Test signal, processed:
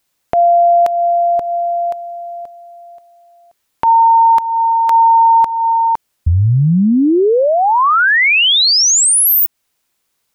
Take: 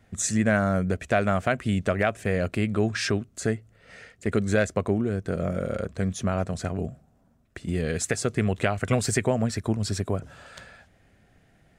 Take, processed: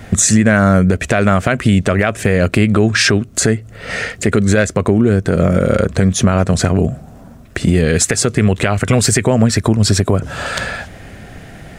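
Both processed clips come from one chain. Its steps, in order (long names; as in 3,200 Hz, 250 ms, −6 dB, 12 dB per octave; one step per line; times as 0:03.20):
dynamic equaliser 700 Hz, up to −4 dB, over −38 dBFS, Q 2.4
downward compressor 3 to 1, threshold −37 dBFS
boost into a limiter +26.5 dB
level −1 dB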